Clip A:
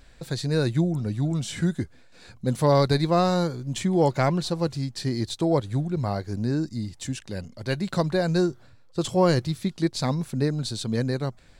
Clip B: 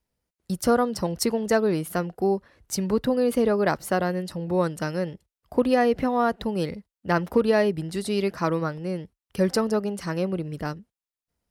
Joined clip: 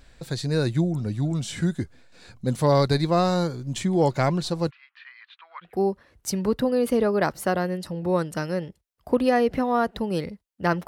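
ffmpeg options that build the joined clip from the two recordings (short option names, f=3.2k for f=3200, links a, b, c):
-filter_complex "[0:a]asplit=3[a][b][c];[a]afade=t=out:st=4.69:d=0.02[d];[b]asuperpass=centerf=1800:order=8:qfactor=1,afade=t=in:st=4.69:d=0.02,afade=t=out:st=5.81:d=0.02[e];[c]afade=t=in:st=5.81:d=0.02[f];[d][e][f]amix=inputs=3:normalize=0,apad=whole_dur=10.87,atrim=end=10.87,atrim=end=5.81,asetpts=PTS-STARTPTS[g];[1:a]atrim=start=2.06:end=7.32,asetpts=PTS-STARTPTS[h];[g][h]acrossfade=d=0.2:c1=tri:c2=tri"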